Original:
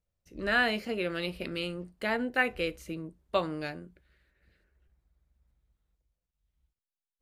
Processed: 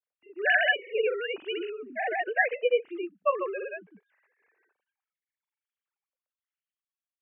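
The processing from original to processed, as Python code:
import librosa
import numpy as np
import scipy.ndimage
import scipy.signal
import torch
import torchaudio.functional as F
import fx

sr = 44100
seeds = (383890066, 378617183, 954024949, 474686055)

y = fx.sine_speech(x, sr)
y = fx.granulator(y, sr, seeds[0], grain_ms=100.0, per_s=20.0, spray_ms=100.0, spread_st=0)
y = y * 10.0 ** (5.0 / 20.0)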